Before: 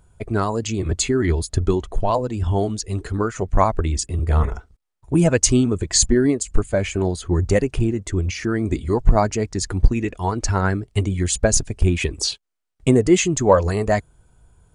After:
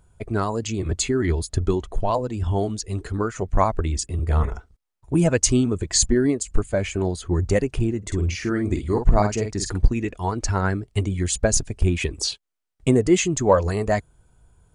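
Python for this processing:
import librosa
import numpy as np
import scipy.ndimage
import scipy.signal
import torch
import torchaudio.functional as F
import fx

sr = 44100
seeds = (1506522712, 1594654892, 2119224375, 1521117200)

y = fx.doubler(x, sr, ms=48.0, db=-6.5, at=(8.02, 9.78), fade=0.02)
y = y * 10.0 ** (-2.5 / 20.0)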